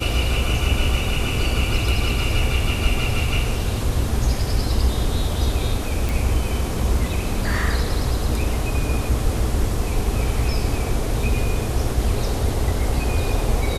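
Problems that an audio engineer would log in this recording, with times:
6.09 pop

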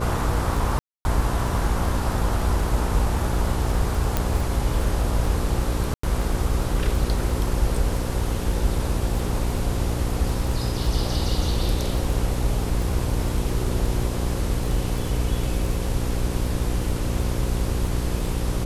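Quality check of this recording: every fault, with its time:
buzz 60 Hz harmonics 9 -27 dBFS
crackle 12/s -26 dBFS
0.79–1.05 gap 0.26 s
4.17 pop
5.94–6.03 gap 94 ms

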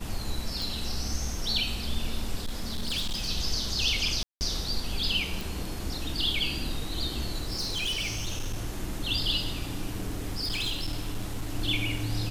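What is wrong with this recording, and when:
0.62 pop
2.39–3.29 clipped -26.5 dBFS
4.23–4.41 gap 0.179 s
5.41 pop
7.42–8.61 clipped -26.5 dBFS
9.96–11.55 clipped -26 dBFS

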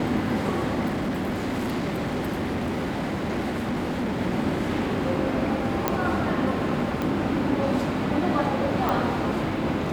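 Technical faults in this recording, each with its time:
0.87–4.2 clipped -23 dBFS
5.88 pop -7 dBFS
7.02 pop
8.89 pop

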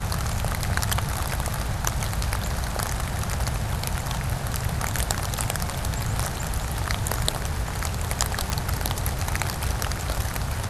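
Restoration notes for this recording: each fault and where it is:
8.5 pop

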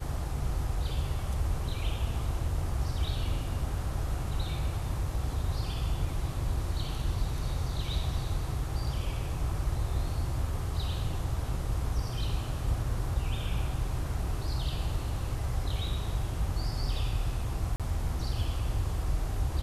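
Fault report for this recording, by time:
17.76–17.8 gap 37 ms

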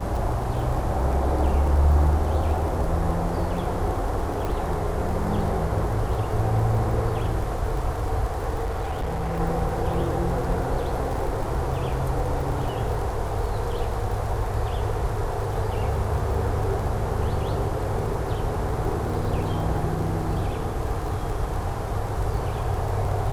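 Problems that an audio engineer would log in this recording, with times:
crackle 33/s -31 dBFS
4.45 pop
8.64–9.4 clipped -23.5 dBFS

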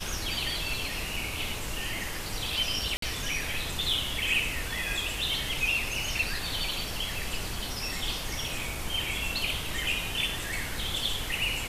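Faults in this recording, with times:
2.97–3.02 gap 53 ms

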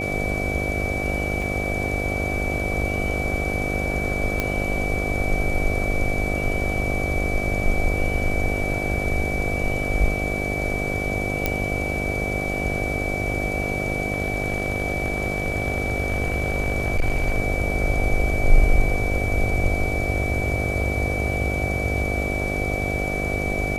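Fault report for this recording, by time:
buzz 50 Hz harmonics 15 -28 dBFS
tone 2300 Hz -27 dBFS
1.42 gap 3.5 ms
4.4 pop -8 dBFS
11.46 pop -6 dBFS
14.14–17.38 clipped -15.5 dBFS

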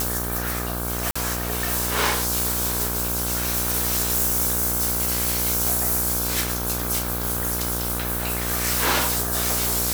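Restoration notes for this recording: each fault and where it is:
buzz 60 Hz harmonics 27 -29 dBFS
1.11–1.16 gap 45 ms

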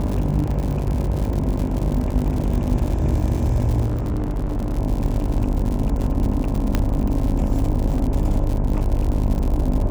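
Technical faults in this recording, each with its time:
buzz 50 Hz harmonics 21 -24 dBFS
crackle 120/s -25 dBFS
0.51 gap 4.3 ms
3.86–4.79 clipped -19.5 dBFS
6.75 pop -6 dBFS
7.98 gap 2.5 ms

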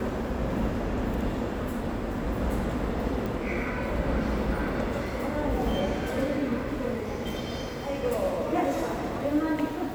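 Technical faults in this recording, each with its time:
3.26 pop

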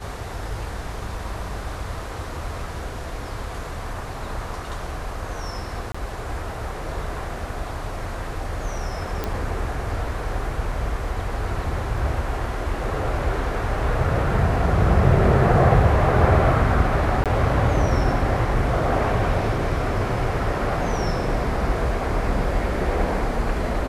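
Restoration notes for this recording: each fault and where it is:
5.92–5.95 gap 25 ms
9.24 pop -11 dBFS
17.24–17.26 gap 17 ms

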